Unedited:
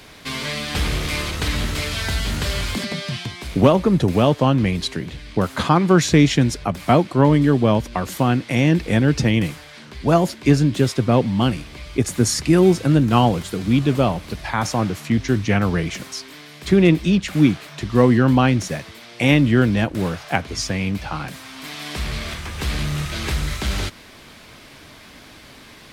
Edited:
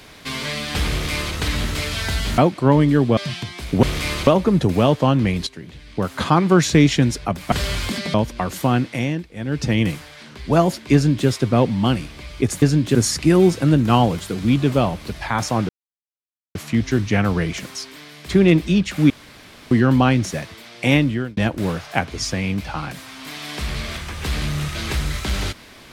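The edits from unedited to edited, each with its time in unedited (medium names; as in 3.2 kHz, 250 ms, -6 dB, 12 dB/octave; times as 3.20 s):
0.91–1.35 s: copy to 3.66 s
2.38–3.00 s: swap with 6.91–7.70 s
4.86–5.72 s: fade in, from -13 dB
8.38–9.36 s: dip -18.5 dB, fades 0.46 s
10.50–10.83 s: copy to 12.18 s
14.92 s: insert silence 0.86 s
17.47–18.08 s: room tone
19.28–19.74 s: fade out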